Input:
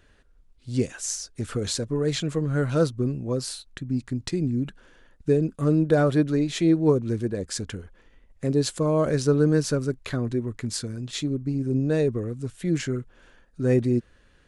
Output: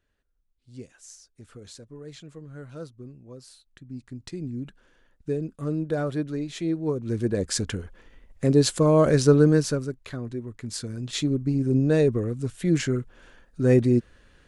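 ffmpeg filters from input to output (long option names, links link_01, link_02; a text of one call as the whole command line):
ffmpeg -i in.wav -af "volume=13dB,afade=type=in:start_time=3.49:duration=1.14:silence=0.316228,afade=type=in:start_time=6.96:duration=0.42:silence=0.281838,afade=type=out:start_time=9.32:duration=0.63:silence=0.298538,afade=type=in:start_time=10.59:duration=0.64:silence=0.354813" out.wav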